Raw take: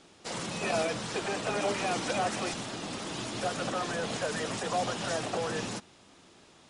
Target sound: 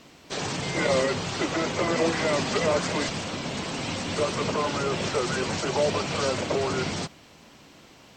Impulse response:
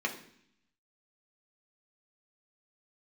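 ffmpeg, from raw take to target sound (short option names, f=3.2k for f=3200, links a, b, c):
-af "acrusher=bits=11:mix=0:aa=0.000001,asetrate=36162,aresample=44100,volume=6dB"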